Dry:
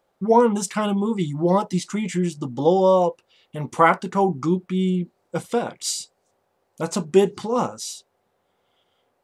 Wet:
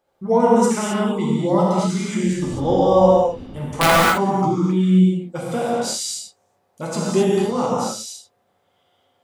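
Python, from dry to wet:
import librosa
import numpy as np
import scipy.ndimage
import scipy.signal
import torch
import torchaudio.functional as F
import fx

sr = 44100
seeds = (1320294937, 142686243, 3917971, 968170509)

y = fx.dmg_wind(x, sr, seeds[0], corner_hz=310.0, level_db=-29.0, at=(2.23, 3.89), fade=0.02)
y = (np.mod(10.0 ** (4.0 / 20.0) * y + 1.0, 2.0) - 1.0) / 10.0 ** (4.0 / 20.0)
y = fx.rev_gated(y, sr, seeds[1], gate_ms=290, shape='flat', drr_db=-6.0)
y = y * 10.0 ** (-4.0 / 20.0)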